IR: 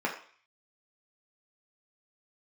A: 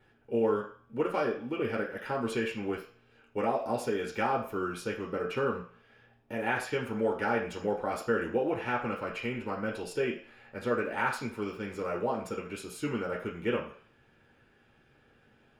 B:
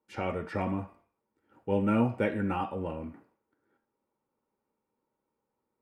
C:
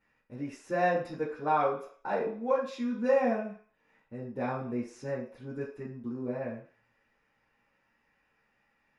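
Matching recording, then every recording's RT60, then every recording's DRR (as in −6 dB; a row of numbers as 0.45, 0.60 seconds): A; 0.45, 0.45, 0.45 seconds; −2.0, 5.5, −8.0 decibels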